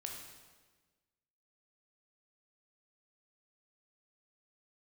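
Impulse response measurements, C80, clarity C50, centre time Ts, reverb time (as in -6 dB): 5.0 dB, 3.0 dB, 52 ms, 1.4 s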